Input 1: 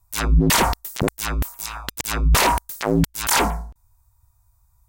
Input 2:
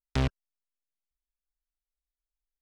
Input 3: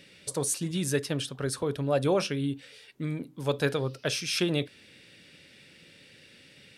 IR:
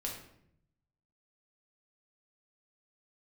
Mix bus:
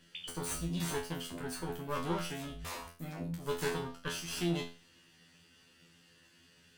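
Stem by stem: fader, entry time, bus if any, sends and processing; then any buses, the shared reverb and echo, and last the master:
-4.5 dB, 0.30 s, no send, auto duck -11 dB, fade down 0.85 s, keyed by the third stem
-6.0 dB, 0.00 s, no send, formants replaced by sine waves; compression, threshold -24 dBFS, peak gain reduction 6.5 dB; level-controlled noise filter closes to 360 Hz, open at -28.5 dBFS
+2.0 dB, 0.00 s, no send, comb filter that takes the minimum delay 0.65 ms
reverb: none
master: feedback comb 85 Hz, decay 0.34 s, harmonics all, mix 100%

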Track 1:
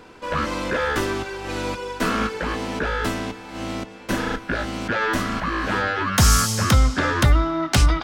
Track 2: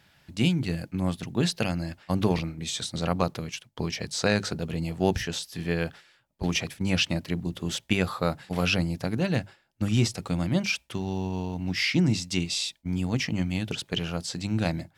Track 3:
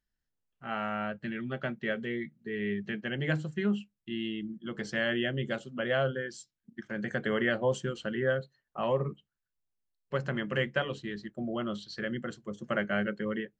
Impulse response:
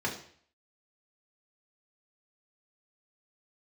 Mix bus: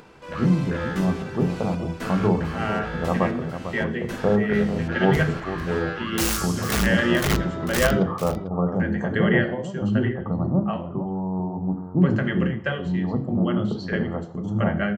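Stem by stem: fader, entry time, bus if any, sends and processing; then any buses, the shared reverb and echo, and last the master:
-10.5 dB, 0.00 s, send -17 dB, echo send -12 dB, integer overflow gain 9.5 dB
0.0 dB, 0.00 s, send -9 dB, echo send -7.5 dB, steep low-pass 1.3 kHz 96 dB/octave
+1.0 dB, 1.90 s, send -4.5 dB, no echo send, endings held to a fixed fall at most 120 dB/s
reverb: on, RT60 0.55 s, pre-delay 3 ms
echo: delay 447 ms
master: upward compressor, threshold -43 dBFS

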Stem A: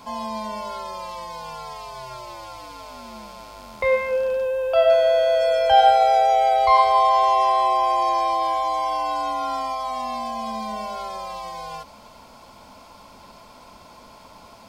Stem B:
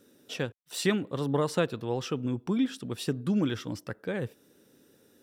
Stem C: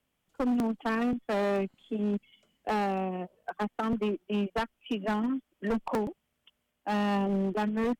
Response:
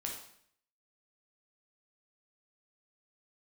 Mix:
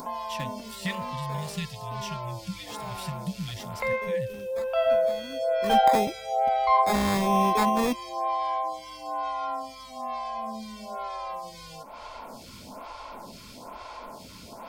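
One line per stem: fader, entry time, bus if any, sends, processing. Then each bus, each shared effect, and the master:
-5.0 dB, 0.00 s, no send, upward compressor, threshold -22 dBFS; lamp-driven phase shifter 1.1 Hz
-0.5 dB, 0.00 s, no send, treble shelf 10 kHz +10 dB; FFT band-reject 200–1700 Hz; de-esser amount 75%
+2.0 dB, 0.00 s, no send, peaking EQ 3.5 kHz +14.5 dB 0.83 oct; sample-and-hold 15×; vibrato 0.81 Hz 26 cents; auto duck -18 dB, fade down 0.50 s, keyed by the second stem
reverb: none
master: none

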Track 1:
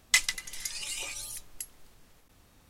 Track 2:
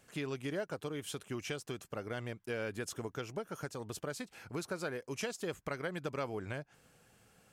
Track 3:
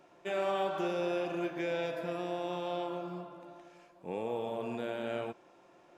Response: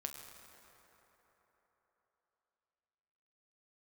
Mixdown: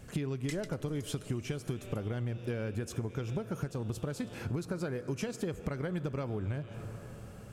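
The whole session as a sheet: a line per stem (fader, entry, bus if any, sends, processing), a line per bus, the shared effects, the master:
-3.5 dB, 0.35 s, no send, auto duck -12 dB, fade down 1.15 s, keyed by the second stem
+3.0 dB, 0.00 s, send -5 dB, bass shelf 490 Hz +8 dB
-17.0 dB, 1.50 s, no send, resonant high shelf 2 kHz +9 dB, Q 1.5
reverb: on, RT60 4.1 s, pre-delay 7 ms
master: bass shelf 160 Hz +11.5 dB; compression 6:1, threshold -32 dBFS, peak gain reduction 13 dB

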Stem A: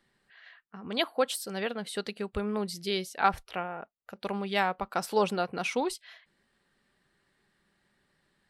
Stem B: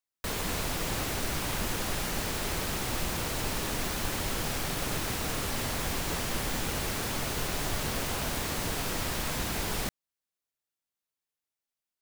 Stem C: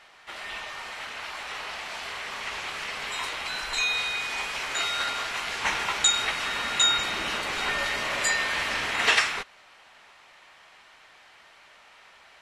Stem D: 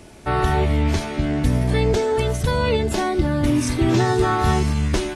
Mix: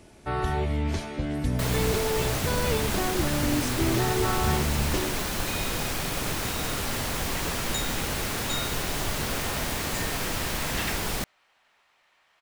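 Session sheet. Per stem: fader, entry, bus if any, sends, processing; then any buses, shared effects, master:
-11.5 dB, 0.00 s, no send, tilt EQ -1.5 dB/octave; compression, threshold -31 dBFS, peak gain reduction 12.5 dB
+2.5 dB, 1.35 s, no send, none
-12.5 dB, 1.70 s, no send, none
-8.0 dB, 0.00 s, no send, none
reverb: none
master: none

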